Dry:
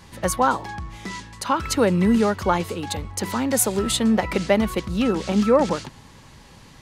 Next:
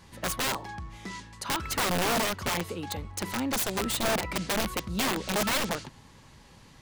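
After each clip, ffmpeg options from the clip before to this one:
-af "aeval=exprs='(mod(5.96*val(0)+1,2)-1)/5.96':c=same,volume=-6.5dB"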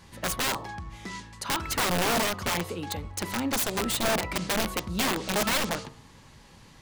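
-af "bandreject=f=64.81:t=h:w=4,bandreject=f=129.62:t=h:w=4,bandreject=f=194.43:t=h:w=4,bandreject=f=259.24:t=h:w=4,bandreject=f=324.05:t=h:w=4,bandreject=f=388.86:t=h:w=4,bandreject=f=453.67:t=h:w=4,bandreject=f=518.48:t=h:w=4,bandreject=f=583.29:t=h:w=4,bandreject=f=648.1:t=h:w=4,bandreject=f=712.91:t=h:w=4,bandreject=f=777.72:t=h:w=4,bandreject=f=842.53:t=h:w=4,bandreject=f=907.34:t=h:w=4,bandreject=f=972.15:t=h:w=4,bandreject=f=1.03696k:t=h:w=4,bandreject=f=1.10177k:t=h:w=4,bandreject=f=1.16658k:t=h:w=4,bandreject=f=1.23139k:t=h:w=4,bandreject=f=1.2962k:t=h:w=4,volume=1.5dB"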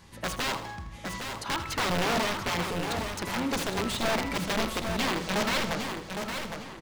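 -filter_complex "[0:a]asplit=2[a][b];[b]adelay=810,lowpass=f=4.7k:p=1,volume=-6dB,asplit=2[c][d];[d]adelay=810,lowpass=f=4.7k:p=1,volume=0.36,asplit=2[e][f];[f]adelay=810,lowpass=f=4.7k:p=1,volume=0.36,asplit=2[g][h];[h]adelay=810,lowpass=f=4.7k:p=1,volume=0.36[i];[c][e][g][i]amix=inputs=4:normalize=0[j];[a][j]amix=inputs=2:normalize=0,acrossover=split=6200[k][l];[l]acompressor=threshold=-38dB:ratio=4:attack=1:release=60[m];[k][m]amix=inputs=2:normalize=0,asplit=2[n][o];[o]aecho=0:1:80|160|240|320|400:0.237|0.121|0.0617|0.0315|0.016[p];[n][p]amix=inputs=2:normalize=0,volume=-1.5dB"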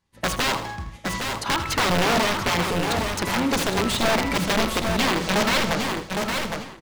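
-filter_complex "[0:a]agate=range=-33dB:threshold=-34dB:ratio=3:detection=peak,asplit=2[a][b];[b]acompressor=threshold=-36dB:ratio=6,volume=1.5dB[c];[a][c]amix=inputs=2:normalize=0,volume=4dB"

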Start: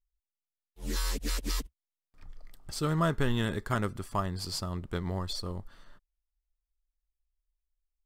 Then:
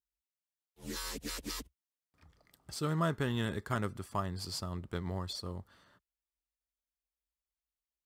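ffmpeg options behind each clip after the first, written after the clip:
-af "highpass=f=60:w=0.5412,highpass=f=60:w=1.3066,volume=-4dB"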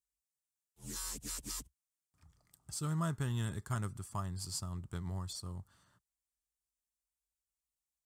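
-af "equalizer=f=125:t=o:w=1:g=5,equalizer=f=250:t=o:w=1:g=-4,equalizer=f=500:t=o:w=1:g=-9,equalizer=f=2k:t=o:w=1:g=-6,equalizer=f=4k:t=o:w=1:g=-5,equalizer=f=8k:t=o:w=1:g=9,volume=-2.5dB"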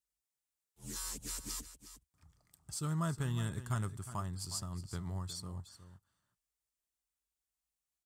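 -af "aecho=1:1:362:0.224"

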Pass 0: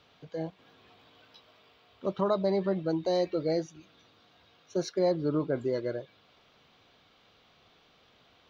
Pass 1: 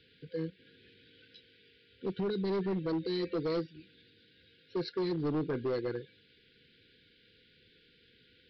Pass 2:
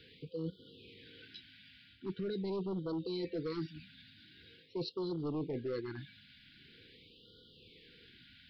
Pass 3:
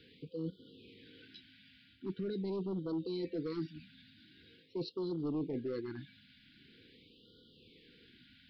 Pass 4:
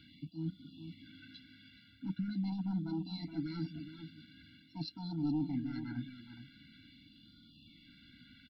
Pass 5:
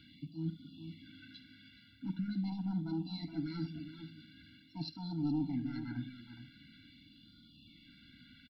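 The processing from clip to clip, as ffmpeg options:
-af "afftfilt=real='re*(1-between(b*sr/4096,520,1400))':imag='im*(1-between(b*sr/4096,520,1400))':win_size=4096:overlap=0.75,aresample=11025,asoftclip=type=hard:threshold=-28.5dB,aresample=44100"
-af "areverse,acompressor=threshold=-41dB:ratio=6,areverse,afftfilt=real='re*(1-between(b*sr/1024,380*pow(2100/380,0.5+0.5*sin(2*PI*0.44*pts/sr))/1.41,380*pow(2100/380,0.5+0.5*sin(2*PI*0.44*pts/sr))*1.41))':imag='im*(1-between(b*sr/1024,380*pow(2100/380,0.5+0.5*sin(2*PI*0.44*pts/sr))/1.41,380*pow(2100/380,0.5+0.5*sin(2*PI*0.44*pts/sr))*1.41))':win_size=1024:overlap=0.75,volume=5dB"
-af "equalizer=f=260:w=1.4:g=7,volume=-3.5dB"
-filter_complex "[0:a]asplit=2[a][b];[b]adelay=419.8,volume=-10dB,highshelf=f=4k:g=-9.45[c];[a][c]amix=inputs=2:normalize=0,afftfilt=real='re*eq(mod(floor(b*sr/1024/330),2),0)':imag='im*eq(mod(floor(b*sr/1024/330),2),0)':win_size=1024:overlap=0.75,volume=4dB"
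-af "aecho=1:1:49|74:0.126|0.158"

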